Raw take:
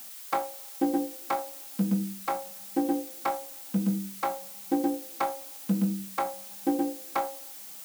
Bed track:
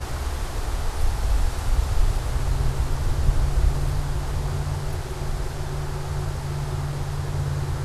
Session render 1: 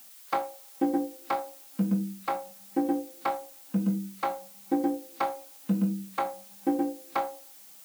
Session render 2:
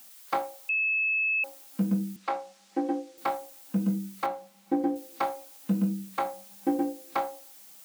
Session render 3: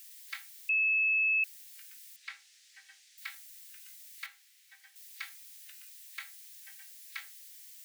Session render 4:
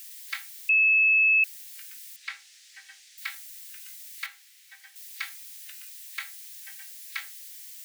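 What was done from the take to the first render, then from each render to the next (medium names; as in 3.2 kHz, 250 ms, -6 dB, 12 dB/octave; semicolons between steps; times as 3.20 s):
noise print and reduce 7 dB
0.69–1.44 s: bleep 2.6 kHz -23.5 dBFS; 2.16–3.18 s: three-band isolator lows -18 dB, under 230 Hz, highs -24 dB, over 7.5 kHz; 4.26–4.96 s: low-pass 2.6 kHz 6 dB/octave
elliptic high-pass 1.8 kHz, stop band 80 dB
trim +7.5 dB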